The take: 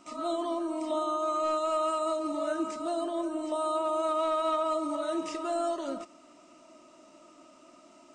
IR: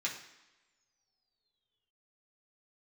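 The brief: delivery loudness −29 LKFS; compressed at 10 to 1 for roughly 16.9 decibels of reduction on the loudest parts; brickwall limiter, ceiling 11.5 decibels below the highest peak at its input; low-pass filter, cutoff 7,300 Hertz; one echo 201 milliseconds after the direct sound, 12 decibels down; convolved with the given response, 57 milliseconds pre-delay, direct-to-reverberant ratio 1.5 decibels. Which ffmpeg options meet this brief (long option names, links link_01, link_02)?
-filter_complex "[0:a]lowpass=7300,acompressor=threshold=-44dB:ratio=10,alimiter=level_in=22dB:limit=-24dB:level=0:latency=1,volume=-22dB,aecho=1:1:201:0.251,asplit=2[link_01][link_02];[1:a]atrim=start_sample=2205,adelay=57[link_03];[link_02][link_03]afir=irnorm=-1:irlink=0,volume=-5dB[link_04];[link_01][link_04]amix=inputs=2:normalize=0,volume=22.5dB"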